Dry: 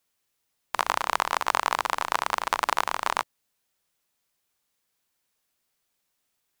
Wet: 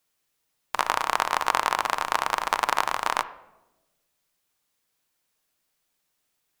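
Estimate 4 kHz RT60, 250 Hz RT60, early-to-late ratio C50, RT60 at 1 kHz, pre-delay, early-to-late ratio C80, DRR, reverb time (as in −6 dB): 0.65 s, 1.3 s, 15.0 dB, 0.90 s, 6 ms, 17.5 dB, 11.5 dB, 1.1 s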